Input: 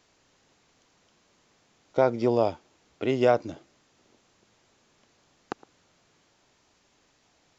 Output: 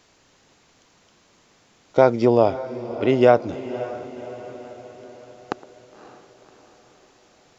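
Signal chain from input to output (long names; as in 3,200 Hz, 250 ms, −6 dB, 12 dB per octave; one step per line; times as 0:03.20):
0:02.25–0:03.53: low-pass filter 3,300 Hz 6 dB per octave
feedback delay with all-pass diffusion 557 ms, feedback 54%, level −14 dB
level +7 dB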